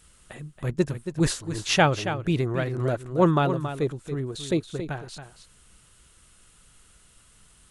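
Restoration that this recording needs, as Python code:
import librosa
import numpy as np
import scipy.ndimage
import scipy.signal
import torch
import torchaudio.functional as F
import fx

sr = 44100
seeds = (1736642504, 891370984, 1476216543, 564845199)

y = fx.fix_echo_inverse(x, sr, delay_ms=276, level_db=-10.0)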